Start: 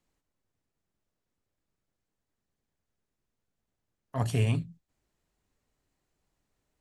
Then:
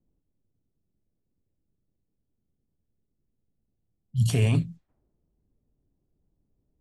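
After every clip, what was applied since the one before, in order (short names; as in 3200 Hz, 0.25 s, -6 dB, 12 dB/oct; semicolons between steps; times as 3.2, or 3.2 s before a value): low-pass opened by the level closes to 320 Hz, open at -31 dBFS; spectral repair 3.83–4.27, 220–2800 Hz before; limiter -21.5 dBFS, peak gain reduction 6 dB; gain +8 dB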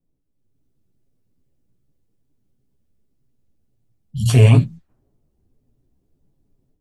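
chorus voices 4, 0.81 Hz, delay 12 ms, depth 4.9 ms; dynamic EQ 950 Hz, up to +5 dB, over -46 dBFS, Q 0.79; AGC gain up to 9 dB; gain +2.5 dB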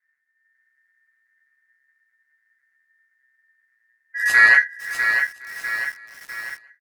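ring modulator 1800 Hz; feedback echo 0.532 s, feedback 49%, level -19 dB; lo-fi delay 0.65 s, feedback 55%, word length 6-bit, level -6.5 dB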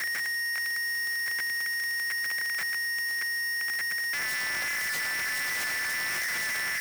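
infinite clipping; frequency shift +70 Hz; gain -5.5 dB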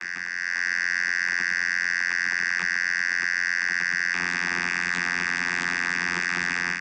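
Chebyshev band-stop 360–900 Hz, order 2; vocoder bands 16, saw 87.9 Hz; AGC gain up to 7 dB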